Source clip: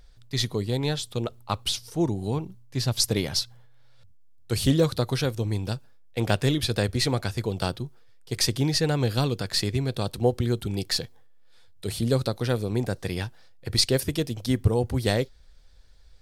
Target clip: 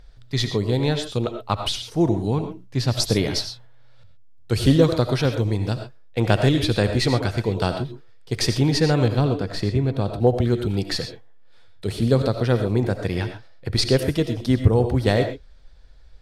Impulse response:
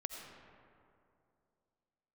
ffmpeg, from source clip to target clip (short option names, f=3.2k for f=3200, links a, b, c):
-filter_complex "[0:a]asetnsamples=n=441:p=0,asendcmd='9.08 lowpass f 1000;10.27 lowpass f 2500',lowpass=f=3.2k:p=1[a];[1:a]atrim=start_sample=2205,atrim=end_sample=6174[b];[a][b]afir=irnorm=-1:irlink=0,volume=8dB"